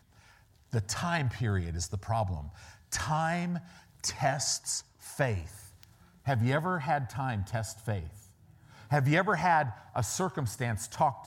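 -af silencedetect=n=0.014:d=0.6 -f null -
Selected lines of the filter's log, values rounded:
silence_start: 0.00
silence_end: 0.73 | silence_duration: 0.73
silence_start: 8.09
silence_end: 8.91 | silence_duration: 0.83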